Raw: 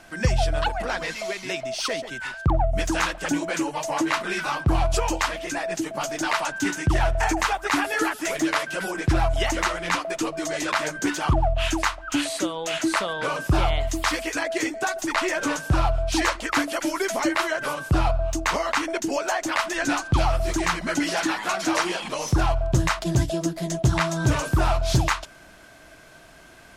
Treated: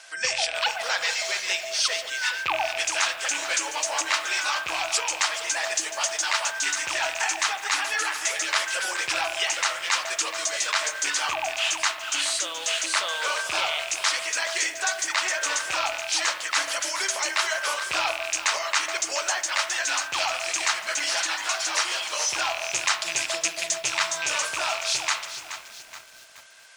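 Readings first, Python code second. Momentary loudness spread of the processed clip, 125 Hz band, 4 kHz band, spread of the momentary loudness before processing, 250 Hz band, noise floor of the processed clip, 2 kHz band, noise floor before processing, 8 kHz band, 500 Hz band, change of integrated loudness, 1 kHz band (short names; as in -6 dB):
2 LU, under -30 dB, +5.5 dB, 5 LU, -22.5 dB, -42 dBFS, +2.0 dB, -48 dBFS, +7.0 dB, -7.0 dB, 0.0 dB, -3.0 dB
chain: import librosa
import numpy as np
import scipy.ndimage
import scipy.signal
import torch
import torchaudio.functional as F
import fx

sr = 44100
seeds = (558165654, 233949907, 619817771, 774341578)

y = fx.rattle_buzz(x, sr, strikes_db=-26.0, level_db=-19.0)
y = fx.weighting(y, sr, curve='ITU-R 468')
y = fx.spec_gate(y, sr, threshold_db=-30, keep='strong')
y = fx.low_shelf_res(y, sr, hz=370.0, db=-10.5, q=1.5)
y = fx.notch(y, sr, hz=710.0, q=22.0)
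y = fx.rider(y, sr, range_db=10, speed_s=0.5)
y = fx.rev_spring(y, sr, rt60_s=1.2, pass_ms=(31,), chirp_ms=80, drr_db=9.5)
y = fx.echo_crushed(y, sr, ms=425, feedback_pct=55, bits=6, wet_db=-10.5)
y = F.gain(torch.from_numpy(y), -5.0).numpy()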